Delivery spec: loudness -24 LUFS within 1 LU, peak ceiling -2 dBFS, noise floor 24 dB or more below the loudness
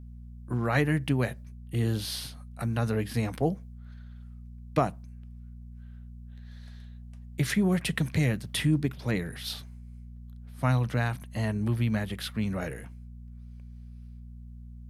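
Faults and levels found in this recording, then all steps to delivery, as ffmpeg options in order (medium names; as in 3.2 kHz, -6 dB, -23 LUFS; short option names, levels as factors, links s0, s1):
hum 60 Hz; highest harmonic 240 Hz; hum level -40 dBFS; loudness -29.5 LUFS; peak level -11.0 dBFS; loudness target -24.0 LUFS
-> -af "bandreject=f=60:t=h:w=4,bandreject=f=120:t=h:w=4,bandreject=f=180:t=h:w=4,bandreject=f=240:t=h:w=4"
-af "volume=1.88"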